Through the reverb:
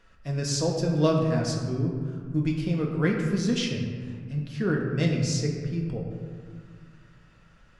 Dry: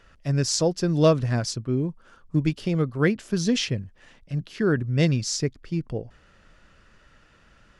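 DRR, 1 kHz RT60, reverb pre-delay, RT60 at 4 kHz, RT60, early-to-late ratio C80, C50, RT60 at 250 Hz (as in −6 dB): −1.0 dB, 1.9 s, 4 ms, 0.95 s, 1.9 s, 4.5 dB, 3.0 dB, 2.6 s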